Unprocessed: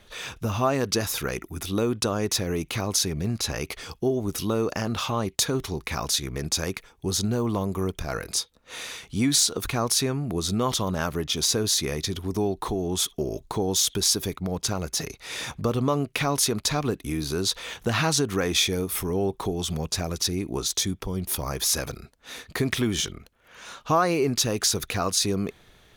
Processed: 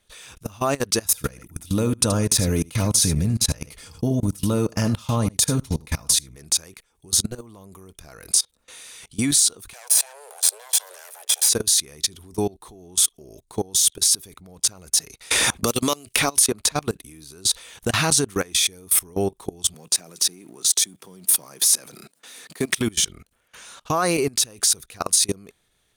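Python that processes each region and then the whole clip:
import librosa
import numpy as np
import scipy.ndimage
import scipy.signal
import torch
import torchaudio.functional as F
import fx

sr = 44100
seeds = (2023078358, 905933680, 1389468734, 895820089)

y = fx.chain(x, sr, fx.low_shelf(hz=250.0, db=10.0),
    fx.notch_comb(f0_hz=380.0),
    fx.echo_single(ms=77, db=-13.0), at=(1.05, 6.36))
y = fx.chain(y, sr, fx.lower_of_two(delay_ms=1.2),
    fx.steep_highpass(hz=430.0, slope=72),
    fx.high_shelf(hz=5800.0, db=7.0), at=(9.73, 11.49))
y = fx.chain(y, sr, fx.peak_eq(hz=140.0, db=-9.0, octaves=0.39),
    fx.band_squash(depth_pct=100), at=(15.31, 16.72))
y = fx.chain(y, sr, fx.law_mismatch(coded='mu'),
    fx.highpass(hz=160.0, slope=24), at=(19.74, 22.77))
y = fx.high_shelf(y, sr, hz=3300.0, db=7.5)
y = fx.level_steps(y, sr, step_db=24)
y = fx.peak_eq(y, sr, hz=9000.0, db=10.0, octaves=0.4)
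y = y * librosa.db_to_amplitude(3.5)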